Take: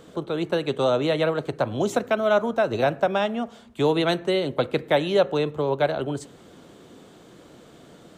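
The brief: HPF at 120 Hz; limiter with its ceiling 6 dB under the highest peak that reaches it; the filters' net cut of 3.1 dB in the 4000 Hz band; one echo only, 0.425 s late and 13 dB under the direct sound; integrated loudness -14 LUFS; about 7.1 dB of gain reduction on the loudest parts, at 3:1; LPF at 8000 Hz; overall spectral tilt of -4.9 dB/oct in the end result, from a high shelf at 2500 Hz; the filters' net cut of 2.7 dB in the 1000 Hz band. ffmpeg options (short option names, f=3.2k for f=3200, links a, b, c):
-af "highpass=120,lowpass=8k,equalizer=f=1k:t=o:g=-4.5,highshelf=f=2.5k:g=5,equalizer=f=4k:t=o:g=-7.5,acompressor=threshold=-26dB:ratio=3,alimiter=limit=-21.5dB:level=0:latency=1,aecho=1:1:425:0.224,volume=17.5dB"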